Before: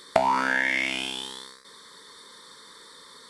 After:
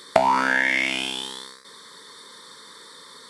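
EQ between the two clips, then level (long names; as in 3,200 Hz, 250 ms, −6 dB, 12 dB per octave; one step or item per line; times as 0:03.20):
high-pass filter 63 Hz
+3.5 dB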